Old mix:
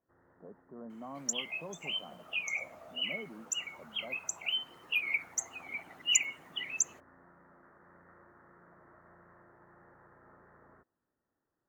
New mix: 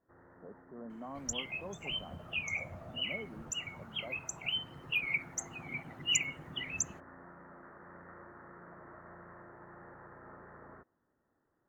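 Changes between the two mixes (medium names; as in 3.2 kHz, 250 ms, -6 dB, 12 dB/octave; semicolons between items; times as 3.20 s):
first sound +7.5 dB; second sound: remove high-pass 390 Hz 12 dB/octave; master: add treble shelf 4.7 kHz -6.5 dB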